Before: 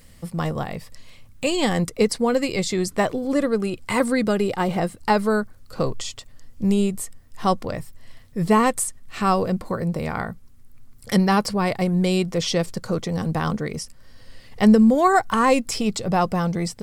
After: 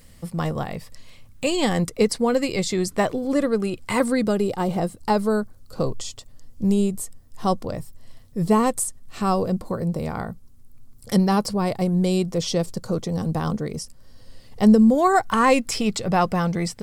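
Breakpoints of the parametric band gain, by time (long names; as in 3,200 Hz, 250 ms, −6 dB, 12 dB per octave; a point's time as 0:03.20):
parametric band 2,000 Hz 1.5 octaves
0:04.03 −1.5 dB
0:04.43 −8.5 dB
0:14.82 −8.5 dB
0:15.48 +2.5 dB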